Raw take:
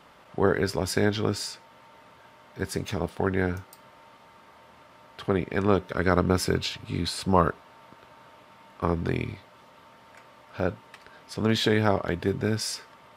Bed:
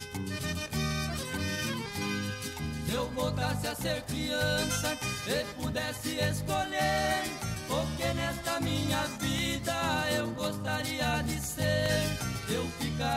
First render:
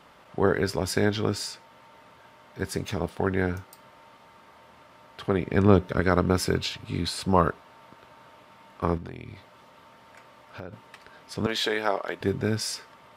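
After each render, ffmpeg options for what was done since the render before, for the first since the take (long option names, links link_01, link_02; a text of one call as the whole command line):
ffmpeg -i in.wav -filter_complex "[0:a]asettb=1/sr,asplit=3[link_01][link_02][link_03];[link_01]atrim=end=5.454[link_04];[link_02]atrim=start=5.45:end=6,asetpts=PTS-STARTPTS,afade=type=in:duration=0.004:curve=qsin,afade=type=out:start_time=0.546:duration=0.004:curve=qsin,lowshelf=frequency=320:gain=8.5[link_05];[link_03]atrim=start=5.996[link_06];[link_04][link_05]acrossfade=duration=0.004:curve1=hsin:curve2=qsin[link_07];[link_07][link_06]acrossfade=duration=0.004:curve1=qsin:curve2=hsin,asettb=1/sr,asplit=3[link_08][link_09][link_10];[link_08]atrim=end=8.974[link_11];[link_09]atrim=start=8.97:end=10.73,asetpts=PTS-STARTPTS,afade=type=in:duration=0.004:curve=qsin,afade=type=out:start_time=1.756:duration=0.004:curve=qsin,acompressor=threshold=-36dB:ratio=4:attack=3.2:release=140:knee=1:detection=peak[link_12];[link_10]atrim=start=10.726[link_13];[link_11][link_12]acrossfade=duration=0.004:curve1=hsin:curve2=qsin[link_14];[link_14][link_13]acrossfade=duration=0.004:curve1=qsin:curve2=hsin,asettb=1/sr,asplit=3[link_15][link_16][link_17];[link_15]atrim=end=11.464[link_18];[link_16]atrim=start=11.46:end=12.21,asetpts=PTS-STARTPTS,afade=type=in:duration=0.004:curve=qsin,afade=type=out:start_time=0.746:duration=0.004:curve=qsin,highpass=470[link_19];[link_17]atrim=start=12.206[link_20];[link_18][link_19]acrossfade=duration=0.004:curve1=hsin:curve2=qsin[link_21];[link_21][link_20]acrossfade=duration=0.004:curve1=qsin:curve2=hsin" out.wav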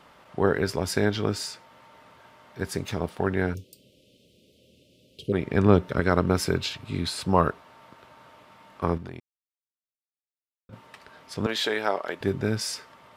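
ffmpeg -i in.wav -filter_complex "[0:a]asplit=3[link_01][link_02][link_03];[link_01]afade=type=out:start_time=3.53:duration=0.02[link_04];[link_02]asuperstop=centerf=1200:order=12:qfactor=0.56,afade=type=in:start_time=3.53:duration=0.02,afade=type=out:start_time=5.32:duration=0.02[link_05];[link_03]afade=type=in:start_time=5.32:duration=0.02[link_06];[link_04][link_05][link_06]amix=inputs=3:normalize=0,asplit=3[link_07][link_08][link_09];[link_07]atrim=end=9.2,asetpts=PTS-STARTPTS,afade=type=out:start_time=9.196:duration=0.004:curve=hsin[link_10];[link_08]atrim=start=9.2:end=10.69,asetpts=PTS-STARTPTS,volume=0[link_11];[link_09]atrim=start=10.69,asetpts=PTS-STARTPTS,afade=type=in:duration=0.004:curve=hsin[link_12];[link_10][link_11][link_12]concat=n=3:v=0:a=1" out.wav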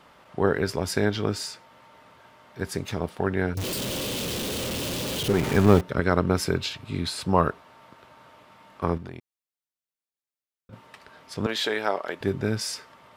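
ffmpeg -i in.wav -filter_complex "[0:a]asettb=1/sr,asplit=3[link_01][link_02][link_03];[link_01]atrim=end=3.574[link_04];[link_02]atrim=start=3.57:end=5.81,asetpts=PTS-STARTPTS,afade=type=in:duration=0.004:curve=qsin,afade=type=out:start_time=2.236:duration=0.004:curve=qsin,aeval=exprs='val(0)+0.5*0.0631*sgn(val(0))':channel_layout=same[link_05];[link_03]atrim=start=5.806[link_06];[link_04][link_05]acrossfade=duration=0.004:curve1=hsin:curve2=qsin[link_07];[link_07][link_06]acrossfade=duration=0.004:curve1=qsin:curve2=hsin" out.wav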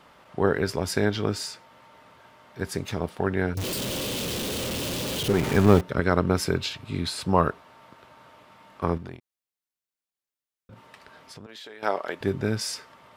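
ffmpeg -i in.wav -filter_complex "[0:a]asettb=1/sr,asplit=3[link_01][link_02][link_03];[link_01]atrim=end=9.154[link_04];[link_02]atrim=start=9.15:end=11.83,asetpts=PTS-STARTPTS,afade=type=in:duration=0.004:curve=qsin,afade=type=out:start_time=2.676:duration=0.004:curve=qsin,acompressor=threshold=-41dB:ratio=6:attack=3.2:release=140:knee=1:detection=peak[link_05];[link_03]atrim=start=11.826[link_06];[link_04][link_05]acrossfade=duration=0.004:curve1=hsin:curve2=qsin[link_07];[link_07][link_06]acrossfade=duration=0.004:curve1=qsin:curve2=hsin" out.wav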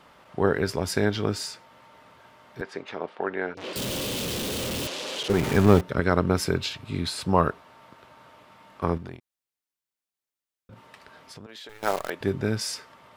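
ffmpeg -i in.wav -filter_complex "[0:a]asettb=1/sr,asplit=3[link_01][link_02][link_03];[link_01]atrim=end=2.614[link_04];[link_02]atrim=start=2.61:end=3.76,asetpts=PTS-STARTPTS,afade=type=in:duration=0.004:curve=qsin,afade=type=out:start_time=1.146:duration=0.004:curve=qsin,highpass=390,lowpass=2900[link_05];[link_03]atrim=start=3.756[link_06];[link_04][link_05]acrossfade=duration=0.004:curve1=hsin:curve2=qsin[link_07];[link_07][link_06]acrossfade=duration=0.004:curve1=qsin:curve2=hsin,asettb=1/sr,asplit=3[link_08][link_09][link_10];[link_08]atrim=end=4.874[link_11];[link_09]atrim=start=4.87:end=5.3,asetpts=PTS-STARTPTS,afade=type=in:duration=0.004:curve=qsin,afade=type=out:start_time=0.426:duration=0.004:curve=qsin,highpass=480,lowpass=6500[link_12];[link_10]atrim=start=5.296[link_13];[link_11][link_12]acrossfade=duration=0.004:curve1=hsin:curve2=qsin[link_14];[link_14][link_13]acrossfade=duration=0.004:curve1=qsin:curve2=hsin,asettb=1/sr,asplit=3[link_15][link_16][link_17];[link_15]atrim=end=11.694[link_18];[link_16]atrim=start=11.69:end=12.1,asetpts=PTS-STARTPTS,afade=type=in:duration=0.004:curve=qsin,afade=type=out:start_time=0.406:duration=0.004:curve=qsin,acrusher=bits=6:dc=4:mix=0:aa=0.000001[link_19];[link_17]atrim=start=12.096[link_20];[link_18][link_19]acrossfade=duration=0.004:curve1=hsin:curve2=qsin[link_21];[link_21][link_20]acrossfade=duration=0.004:curve1=qsin:curve2=hsin" out.wav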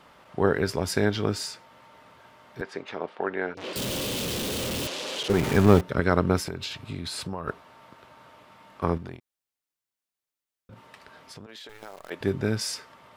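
ffmpeg -i in.wav -filter_complex "[0:a]asettb=1/sr,asplit=3[link_01][link_02][link_03];[link_01]atrim=end=6.384[link_04];[link_02]atrim=start=6.38:end=7.48,asetpts=PTS-STARTPTS,afade=type=in:duration=0.004:curve=qsin,afade=type=out:start_time=1.096:duration=0.004:curve=qsin,acompressor=threshold=-29dB:ratio=6:attack=3.2:release=140:knee=1:detection=peak[link_05];[link_03]atrim=start=7.476[link_06];[link_04][link_05]acrossfade=duration=0.004:curve1=hsin:curve2=qsin[link_07];[link_07][link_06]acrossfade=duration=0.004:curve1=qsin:curve2=hsin,asplit=3[link_08][link_09][link_10];[link_08]afade=type=out:start_time=11.43:duration=0.02[link_11];[link_09]acompressor=threshold=-39dB:ratio=6:attack=3.2:release=140:knee=1:detection=peak,afade=type=in:start_time=11.43:duration=0.02,afade=type=out:start_time=12.1:duration=0.02[link_12];[link_10]afade=type=in:start_time=12.1:duration=0.02[link_13];[link_11][link_12][link_13]amix=inputs=3:normalize=0" out.wav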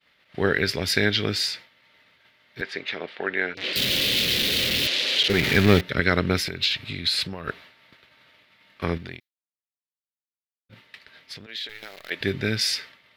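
ffmpeg -i in.wav -af "agate=range=-33dB:threshold=-44dB:ratio=3:detection=peak,equalizer=frequency=1000:width_type=o:width=1:gain=-9,equalizer=frequency=2000:width_type=o:width=1:gain=12,equalizer=frequency=4000:width_type=o:width=1:gain=12,equalizer=frequency=8000:width_type=o:width=1:gain=-6,equalizer=frequency=16000:width_type=o:width=1:gain=7" out.wav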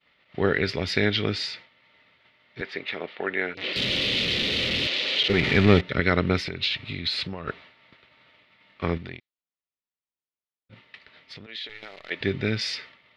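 ffmpeg -i in.wav -af "lowpass=3700,bandreject=frequency=1600:width=9.5" out.wav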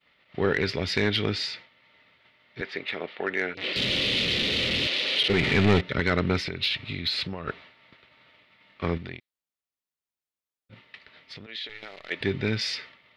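ffmpeg -i in.wav -af "asoftclip=type=tanh:threshold=-12.5dB" out.wav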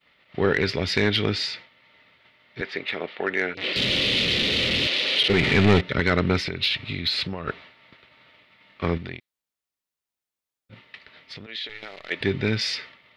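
ffmpeg -i in.wav -af "volume=3dB" out.wav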